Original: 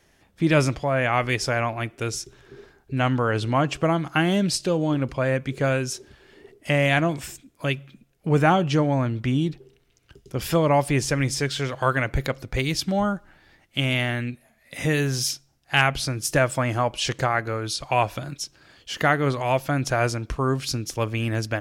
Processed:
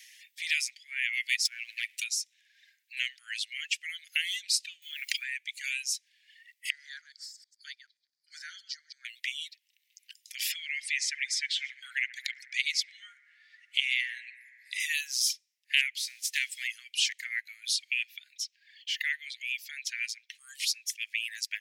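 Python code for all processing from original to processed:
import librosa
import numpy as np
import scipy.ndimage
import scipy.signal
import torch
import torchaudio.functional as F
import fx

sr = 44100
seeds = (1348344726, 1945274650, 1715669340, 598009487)

y = fx.chain(x, sr, fx.low_shelf(hz=140.0, db=9.0),
    fx.over_compress(threshold_db=-26.0, ratio=-0.5),
    fx.leveller(passes=2), at=(1.45, 2.04))
y = fx.chain(y, sr, fx.block_float(bits=7),
    fx.env_flatten(amount_pct=100), at=(4.82, 5.26))
y = fx.chain(y, sr, fx.reverse_delay(ms=106, wet_db=-7.5),
    fx.double_bandpass(hz=2600.0, octaves=1.7), at=(6.7, 9.05))
y = fx.chain(y, sr, fx.lowpass(hz=7000.0, slope=12),
    fx.echo_bbd(ms=70, stages=1024, feedback_pct=83, wet_db=-8), at=(10.52, 14.8))
y = fx.envelope_flatten(y, sr, power=0.6, at=(15.97, 16.66), fade=0.02)
y = fx.lowpass(y, sr, hz=3900.0, slope=6, at=(15.97, 16.66), fade=0.02)
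y = fx.chain(y, sr, fx.highpass(hz=1200.0, slope=12),
    fx.peak_eq(hz=9700.0, db=-11.0, octaves=1.4), at=(18.03, 20.35))
y = fx.dereverb_blind(y, sr, rt60_s=1.7)
y = scipy.signal.sosfilt(scipy.signal.butter(12, 1900.0, 'highpass', fs=sr, output='sos'), y)
y = fx.band_squash(y, sr, depth_pct=40)
y = y * 10.0 ** (1.5 / 20.0)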